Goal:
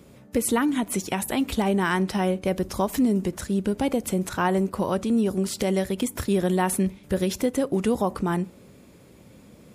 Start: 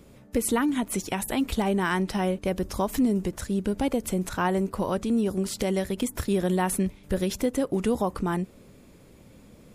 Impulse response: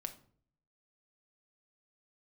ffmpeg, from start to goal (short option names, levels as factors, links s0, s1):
-filter_complex "[0:a]highpass=64,asplit=2[s0][s1];[1:a]atrim=start_sample=2205[s2];[s1][s2]afir=irnorm=-1:irlink=0,volume=0.355[s3];[s0][s3]amix=inputs=2:normalize=0"